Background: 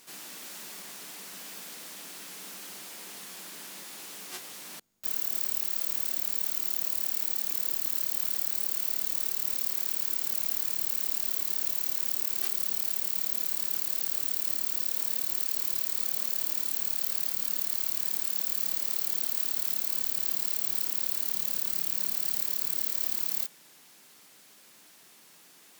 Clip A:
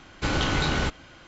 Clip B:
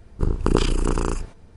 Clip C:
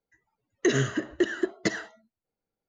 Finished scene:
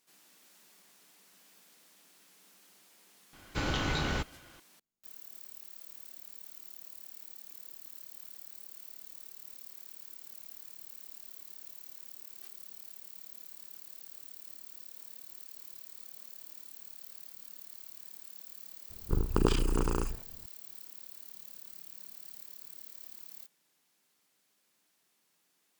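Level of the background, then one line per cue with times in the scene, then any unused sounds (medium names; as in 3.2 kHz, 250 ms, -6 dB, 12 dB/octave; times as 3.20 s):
background -18.5 dB
3.33 s: add A -7 dB
18.90 s: add B -7.5 dB
not used: C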